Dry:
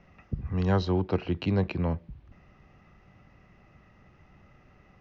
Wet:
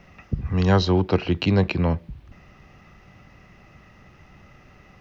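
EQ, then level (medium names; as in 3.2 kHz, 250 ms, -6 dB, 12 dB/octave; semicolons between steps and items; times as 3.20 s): treble shelf 2.7 kHz +8 dB; +6.5 dB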